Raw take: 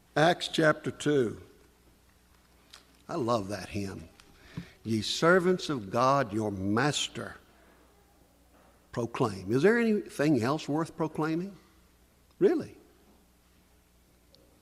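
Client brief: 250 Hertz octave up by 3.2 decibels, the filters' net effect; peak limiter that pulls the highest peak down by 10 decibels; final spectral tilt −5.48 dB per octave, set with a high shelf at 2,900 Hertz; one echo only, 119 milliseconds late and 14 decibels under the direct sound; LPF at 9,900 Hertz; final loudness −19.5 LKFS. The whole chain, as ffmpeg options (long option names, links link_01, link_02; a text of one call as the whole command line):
ffmpeg -i in.wav -af "lowpass=9900,equalizer=frequency=250:width_type=o:gain=4.5,highshelf=frequency=2900:gain=-7,alimiter=limit=-20dB:level=0:latency=1,aecho=1:1:119:0.2,volume=11.5dB" out.wav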